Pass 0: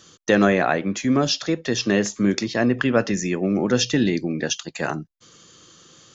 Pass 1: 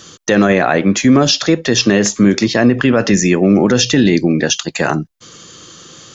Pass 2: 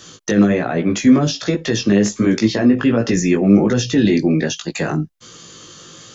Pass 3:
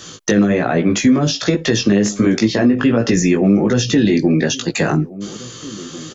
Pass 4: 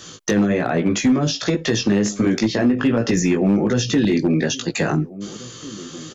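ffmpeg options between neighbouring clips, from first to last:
ffmpeg -i in.wav -af "alimiter=level_in=13dB:limit=-1dB:release=50:level=0:latency=1,volume=-1dB" out.wav
ffmpeg -i in.wav -filter_complex "[0:a]acrossover=split=440[link_01][link_02];[link_02]acompressor=threshold=-20dB:ratio=6[link_03];[link_01][link_03]amix=inputs=2:normalize=0,flanger=delay=17:depth=2.9:speed=1.3,volume=1dB" out.wav
ffmpeg -i in.wav -filter_complex "[0:a]asplit=2[link_01][link_02];[link_02]adelay=1691,volume=-22dB,highshelf=frequency=4000:gain=-38[link_03];[link_01][link_03]amix=inputs=2:normalize=0,acompressor=threshold=-16dB:ratio=3,volume=5dB" out.wav
ffmpeg -i in.wav -af "asoftclip=type=hard:threshold=-7dB,volume=-3.5dB" out.wav

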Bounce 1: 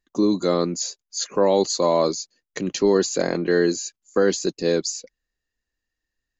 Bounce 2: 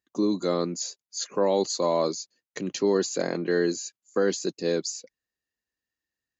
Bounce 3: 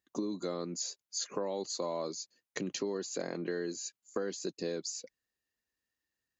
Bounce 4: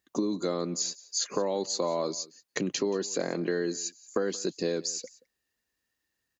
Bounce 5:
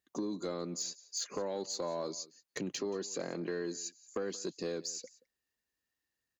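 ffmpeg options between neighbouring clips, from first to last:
ffmpeg -i in.wav -af "highpass=98,volume=-5dB" out.wav
ffmpeg -i in.wav -af "acompressor=threshold=-33dB:ratio=6" out.wav
ffmpeg -i in.wav -af "aecho=1:1:178:0.0891,volume=6.5dB" out.wav
ffmpeg -i in.wav -af "asoftclip=type=tanh:threshold=-20dB,volume=-6.5dB" out.wav

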